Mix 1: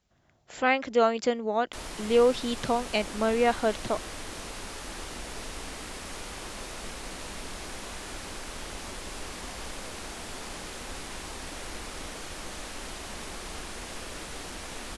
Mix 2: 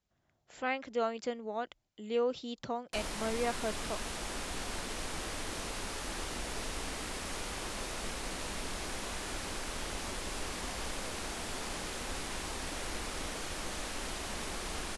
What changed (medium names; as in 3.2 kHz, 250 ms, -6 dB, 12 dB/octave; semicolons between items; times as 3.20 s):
speech -10.0 dB; background: entry +1.20 s